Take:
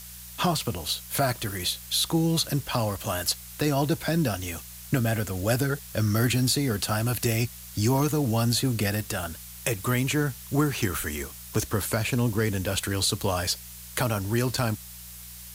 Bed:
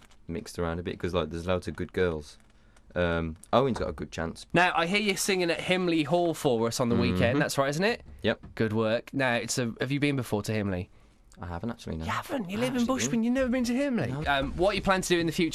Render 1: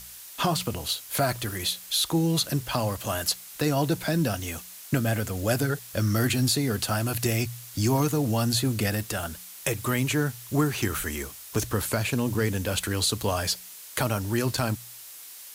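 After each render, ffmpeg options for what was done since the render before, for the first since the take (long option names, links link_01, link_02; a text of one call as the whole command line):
ffmpeg -i in.wav -af "bandreject=frequency=60:width_type=h:width=4,bandreject=frequency=120:width_type=h:width=4,bandreject=frequency=180:width_type=h:width=4" out.wav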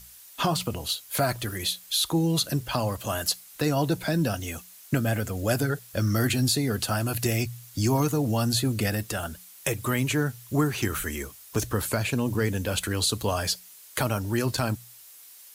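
ffmpeg -i in.wav -af "afftdn=noise_reduction=7:noise_floor=-44" out.wav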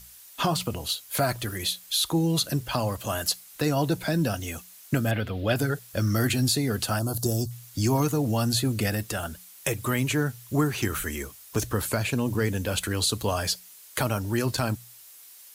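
ffmpeg -i in.wav -filter_complex "[0:a]asettb=1/sr,asplit=3[link_01][link_02][link_03];[link_01]atrim=end=5.114[link_04];[link_02]atrim=start=5.11:end=5.56,asetpts=PTS-STARTPTS,afade=type=in:duration=0.004:curve=qsin,afade=type=out:start_time=0.446:duration=0.004:curve=qsin,highshelf=frequency=5000:width_type=q:width=3:gain=-13[link_05];[link_03]atrim=start=5.556[link_06];[link_04][link_05]acrossfade=duration=0.004:curve1=hsin:curve2=qsin[link_07];[link_07][link_06]acrossfade=duration=0.004:curve1=qsin:curve2=hsin,asettb=1/sr,asplit=3[link_08][link_09][link_10];[link_08]atrim=end=6.994[link_11];[link_09]atrim=start=6.99:end=7.51,asetpts=PTS-STARTPTS,afade=type=in:duration=0.004:curve=qsin,afade=type=out:start_time=0.516:duration=0.004:curve=qsin,asuperstop=centerf=2200:order=4:qfactor=0.7[link_12];[link_10]atrim=start=7.506[link_13];[link_11][link_12]acrossfade=duration=0.004:curve1=hsin:curve2=qsin[link_14];[link_14][link_13]acrossfade=duration=0.004:curve1=qsin:curve2=hsin" out.wav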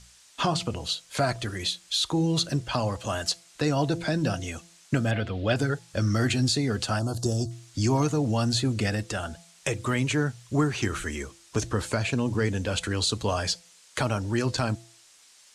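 ffmpeg -i in.wav -af "lowpass=frequency=8000:width=0.5412,lowpass=frequency=8000:width=1.3066,bandreject=frequency=168.9:width_type=h:width=4,bandreject=frequency=337.8:width_type=h:width=4,bandreject=frequency=506.7:width_type=h:width=4,bandreject=frequency=675.6:width_type=h:width=4,bandreject=frequency=844.5:width_type=h:width=4" out.wav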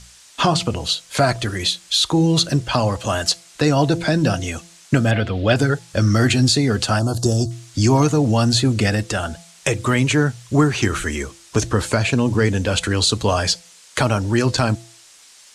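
ffmpeg -i in.wav -af "volume=8.5dB" out.wav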